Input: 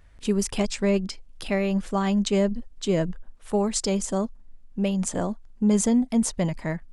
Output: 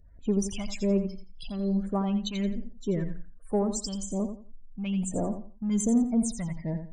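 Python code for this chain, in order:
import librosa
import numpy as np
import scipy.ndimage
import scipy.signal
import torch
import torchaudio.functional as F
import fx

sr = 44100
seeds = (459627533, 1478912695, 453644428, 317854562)

p1 = fx.spec_erase(x, sr, start_s=1.47, length_s=0.31, low_hz=1400.0, high_hz=4000.0)
p2 = fx.cheby1_bandstop(p1, sr, low_hz=1100.0, high_hz=3000.0, order=5, at=(3.69, 4.2))
p3 = fx.spec_topn(p2, sr, count=32)
p4 = 10.0 ** (-22.0 / 20.0) * np.tanh(p3 / 10.0 ** (-22.0 / 20.0))
p5 = p3 + (p4 * librosa.db_to_amplitude(-4.0))
p6 = fx.phaser_stages(p5, sr, stages=2, low_hz=410.0, high_hz=4400.0, hz=1.2, feedback_pct=25)
p7 = fx.echo_feedback(p6, sr, ms=86, feedback_pct=25, wet_db=-9.0)
y = p7 * librosa.db_to_amplitude(-6.5)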